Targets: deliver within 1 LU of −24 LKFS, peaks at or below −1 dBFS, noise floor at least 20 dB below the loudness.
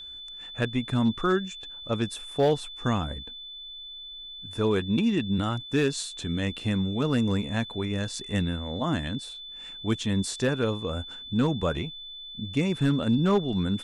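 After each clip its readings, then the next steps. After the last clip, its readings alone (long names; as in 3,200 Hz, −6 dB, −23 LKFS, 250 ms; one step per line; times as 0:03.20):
share of clipped samples 0.3%; peaks flattened at −15.5 dBFS; interfering tone 3,500 Hz; level of the tone −39 dBFS; integrated loudness −27.5 LKFS; sample peak −15.5 dBFS; target loudness −24.0 LKFS
→ clipped peaks rebuilt −15.5 dBFS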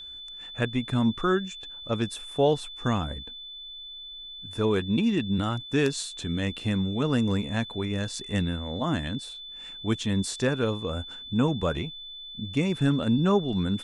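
share of clipped samples 0.0%; interfering tone 3,500 Hz; level of the tone −39 dBFS
→ notch filter 3,500 Hz, Q 30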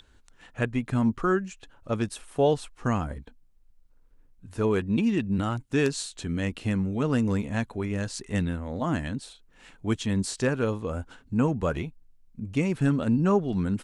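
interfering tone none found; integrated loudness −27.5 LKFS; sample peak −9.0 dBFS; target loudness −24.0 LKFS
→ level +3.5 dB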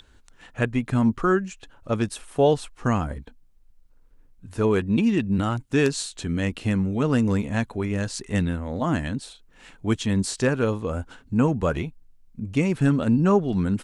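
integrated loudness −24.0 LKFS; sample peak −5.5 dBFS; background noise floor −55 dBFS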